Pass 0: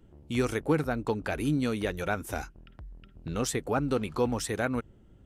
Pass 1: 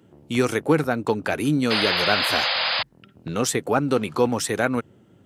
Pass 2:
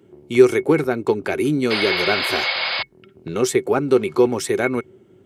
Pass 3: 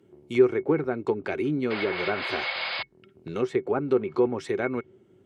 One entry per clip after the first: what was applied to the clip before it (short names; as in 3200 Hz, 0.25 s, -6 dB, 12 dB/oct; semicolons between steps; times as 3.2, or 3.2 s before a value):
HPF 99 Hz 24 dB/oct; low shelf 180 Hz -5 dB; painted sound noise, 1.7–2.83, 490–5100 Hz -31 dBFS; gain +8 dB
small resonant body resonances 380/2200 Hz, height 16 dB, ringing for 85 ms; gain -1 dB
treble ducked by the level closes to 1700 Hz, closed at -14 dBFS; gain -7 dB